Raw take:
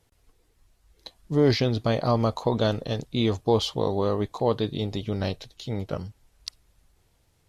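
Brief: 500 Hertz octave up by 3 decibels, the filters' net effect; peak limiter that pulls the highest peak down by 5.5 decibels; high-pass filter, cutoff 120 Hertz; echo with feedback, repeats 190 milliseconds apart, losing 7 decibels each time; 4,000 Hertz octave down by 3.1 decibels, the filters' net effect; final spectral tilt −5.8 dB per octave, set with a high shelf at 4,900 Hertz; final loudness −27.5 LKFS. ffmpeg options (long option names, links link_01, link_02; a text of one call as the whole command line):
ffmpeg -i in.wav -af "highpass=120,equalizer=frequency=500:width_type=o:gain=3.5,equalizer=frequency=4000:width_type=o:gain=-7.5,highshelf=frequency=4900:gain=8,alimiter=limit=-12.5dB:level=0:latency=1,aecho=1:1:190|380|570|760|950:0.447|0.201|0.0905|0.0407|0.0183,volume=-1.5dB" out.wav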